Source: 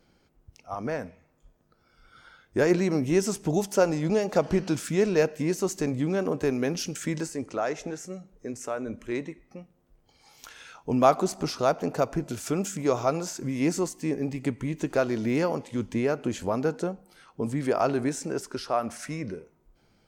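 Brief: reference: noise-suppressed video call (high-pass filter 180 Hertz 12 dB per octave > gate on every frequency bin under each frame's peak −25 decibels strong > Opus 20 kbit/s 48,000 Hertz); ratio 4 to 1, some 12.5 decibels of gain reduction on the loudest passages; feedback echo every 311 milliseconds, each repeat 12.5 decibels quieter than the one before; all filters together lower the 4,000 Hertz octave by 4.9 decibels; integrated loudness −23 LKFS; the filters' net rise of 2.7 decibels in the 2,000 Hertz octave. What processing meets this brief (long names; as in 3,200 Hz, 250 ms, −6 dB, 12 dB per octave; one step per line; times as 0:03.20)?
parametric band 2,000 Hz +5.5 dB
parametric band 4,000 Hz −8.5 dB
downward compressor 4 to 1, threshold −29 dBFS
high-pass filter 180 Hz 12 dB per octave
repeating echo 311 ms, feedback 24%, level −12.5 dB
gate on every frequency bin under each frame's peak −25 dB strong
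level +12 dB
Opus 20 kbit/s 48,000 Hz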